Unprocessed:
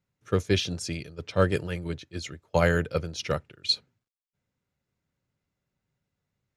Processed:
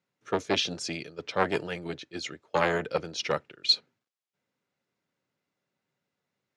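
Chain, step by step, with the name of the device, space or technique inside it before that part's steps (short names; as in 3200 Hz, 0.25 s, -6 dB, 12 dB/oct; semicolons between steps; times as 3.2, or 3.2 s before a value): public-address speaker with an overloaded transformer (core saturation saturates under 810 Hz; BPF 250–6300 Hz); gain +3 dB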